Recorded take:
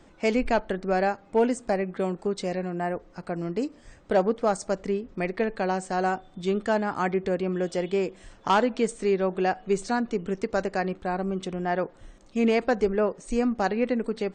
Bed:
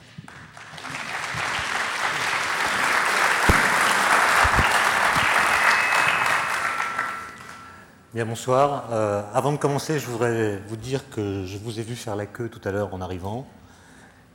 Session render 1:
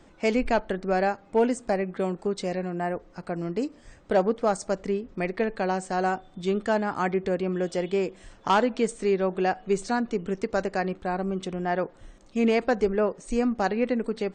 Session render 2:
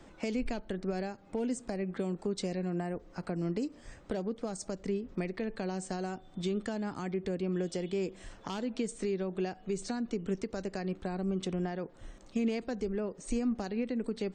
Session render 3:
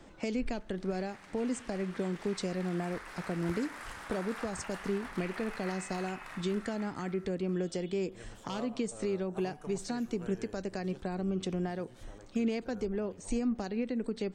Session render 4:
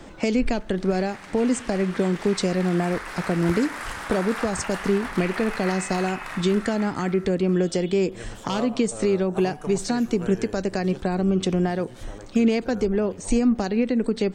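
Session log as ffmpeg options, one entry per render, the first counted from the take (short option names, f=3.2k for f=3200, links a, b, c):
-af anull
-filter_complex "[0:a]alimiter=limit=-21.5dB:level=0:latency=1:release=266,acrossover=split=370|3000[a][b][c];[b]acompressor=threshold=-41dB:ratio=6[d];[a][d][c]amix=inputs=3:normalize=0"
-filter_complex "[1:a]volume=-26dB[a];[0:a][a]amix=inputs=2:normalize=0"
-af "volume=11.5dB"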